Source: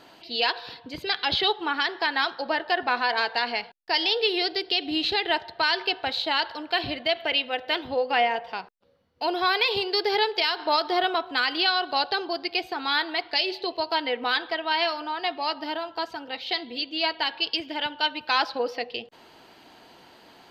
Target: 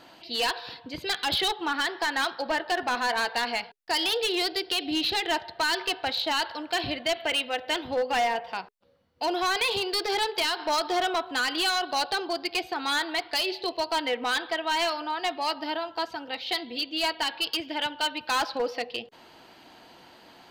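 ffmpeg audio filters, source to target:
-af "asoftclip=type=hard:threshold=0.0891,bandreject=f=420:w=12"

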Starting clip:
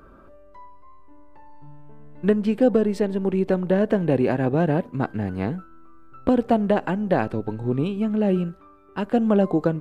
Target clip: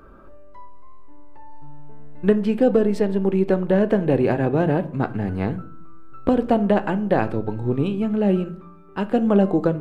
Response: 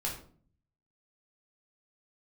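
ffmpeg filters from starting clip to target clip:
-filter_complex "[0:a]asplit=2[s0][s1];[1:a]atrim=start_sample=2205,lowpass=4400[s2];[s1][s2]afir=irnorm=-1:irlink=0,volume=0.251[s3];[s0][s3]amix=inputs=2:normalize=0"

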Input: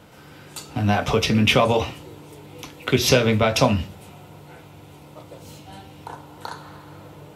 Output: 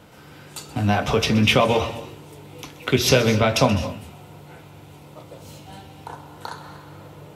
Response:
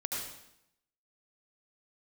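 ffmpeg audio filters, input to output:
-filter_complex "[0:a]asplit=2[s0][s1];[1:a]atrim=start_sample=2205,atrim=end_sample=6615,adelay=129[s2];[s1][s2]afir=irnorm=-1:irlink=0,volume=0.178[s3];[s0][s3]amix=inputs=2:normalize=0"

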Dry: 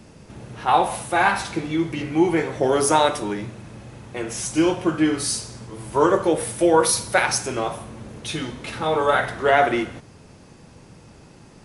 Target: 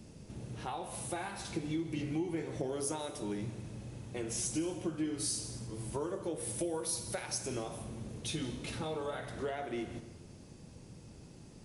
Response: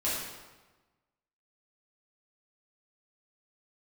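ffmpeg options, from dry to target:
-filter_complex "[0:a]acompressor=threshold=0.0501:ratio=6,equalizer=f=1300:t=o:w=2.4:g=-10,asplit=2[s0][s1];[1:a]atrim=start_sample=2205,adelay=150[s2];[s1][s2]afir=irnorm=-1:irlink=0,volume=0.075[s3];[s0][s3]amix=inputs=2:normalize=0,volume=0.596"

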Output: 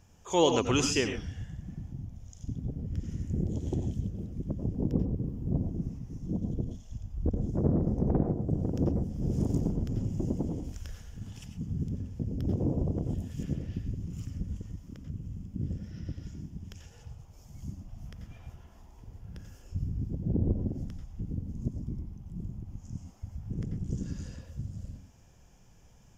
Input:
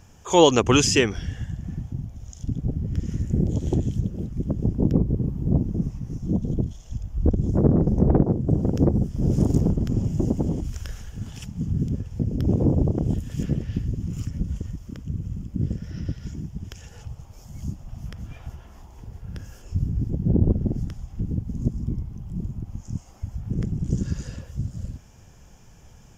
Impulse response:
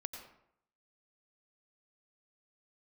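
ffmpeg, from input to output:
-filter_complex "[0:a]equalizer=f=1400:t=o:w=0.77:g=-2[s0];[1:a]atrim=start_sample=2205,atrim=end_sample=6174[s1];[s0][s1]afir=irnorm=-1:irlink=0,volume=0.501"

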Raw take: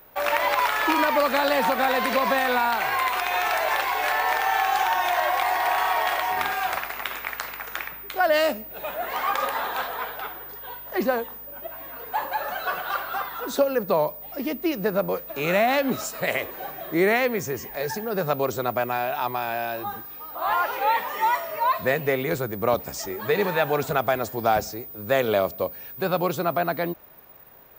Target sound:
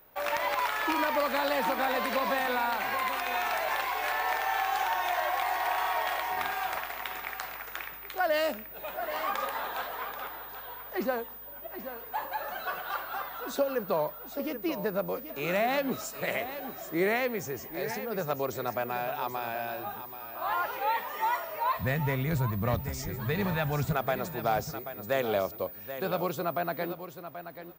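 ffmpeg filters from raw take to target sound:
-filter_complex "[0:a]asplit=3[s0][s1][s2];[s0]afade=t=out:st=21.76:d=0.02[s3];[s1]asubboost=boost=9.5:cutoff=130,afade=t=in:st=21.76:d=0.02,afade=t=out:st=23.92:d=0.02[s4];[s2]afade=t=in:st=23.92:d=0.02[s5];[s3][s4][s5]amix=inputs=3:normalize=0,aeval=exprs='0.299*(abs(mod(val(0)/0.299+3,4)-2)-1)':c=same,aecho=1:1:782|1564:0.282|0.0451,volume=0.447"

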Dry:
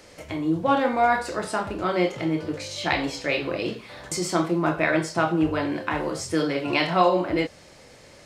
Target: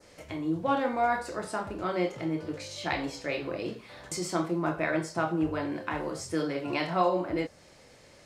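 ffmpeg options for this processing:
-af "adynamicequalizer=threshold=0.00708:dfrequency=3100:dqfactor=1.1:tfrequency=3100:tqfactor=1.1:attack=5:release=100:ratio=0.375:range=3:mode=cutabove:tftype=bell,volume=0.501"

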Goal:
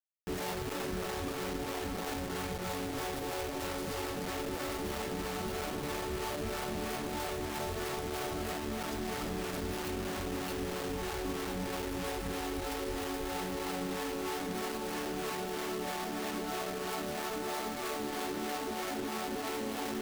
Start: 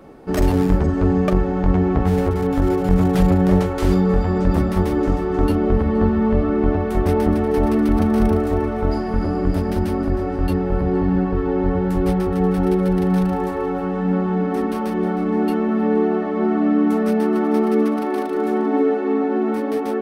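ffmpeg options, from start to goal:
-filter_complex "[0:a]afftfilt=real='re*lt(hypot(re,im),0.631)':imag='im*lt(hypot(re,im),0.631)':win_size=1024:overlap=0.75,alimiter=limit=0.0944:level=0:latency=1:release=30,acrusher=bits=4:mix=0:aa=0.000001,acrossover=split=450[s0][s1];[s0]aeval=exprs='val(0)*(1-0.5/2+0.5/2*cos(2*PI*3.1*n/s))':c=same[s2];[s1]aeval=exprs='val(0)*(1-0.5/2-0.5/2*cos(2*PI*3.1*n/s))':c=same[s3];[s2][s3]amix=inputs=2:normalize=0,acrusher=bits=3:mode=log:mix=0:aa=0.000001,volume=0.447"

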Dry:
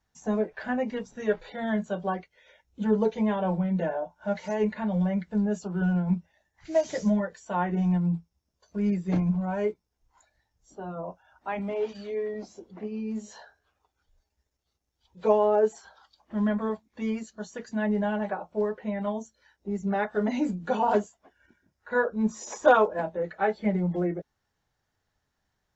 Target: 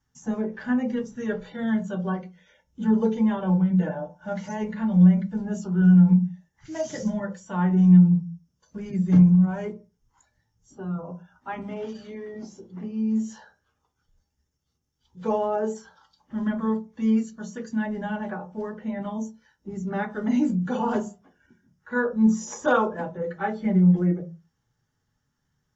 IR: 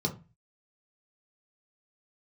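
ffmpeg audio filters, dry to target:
-filter_complex "[0:a]asplit=2[s0][s1];[1:a]atrim=start_sample=2205,highshelf=f=3400:g=6.5[s2];[s1][s2]afir=irnorm=-1:irlink=0,volume=0.316[s3];[s0][s3]amix=inputs=2:normalize=0"

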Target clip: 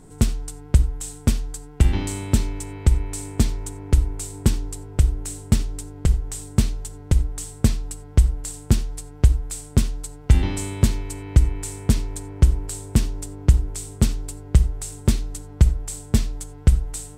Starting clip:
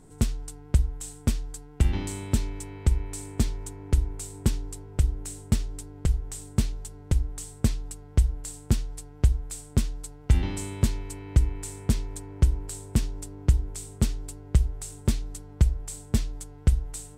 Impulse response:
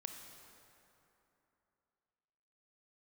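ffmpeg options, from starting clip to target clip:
-filter_complex "[0:a]asplit=2[s0][s1];[1:a]atrim=start_sample=2205,atrim=end_sample=4410[s2];[s1][s2]afir=irnorm=-1:irlink=0,volume=1.5[s3];[s0][s3]amix=inputs=2:normalize=0"

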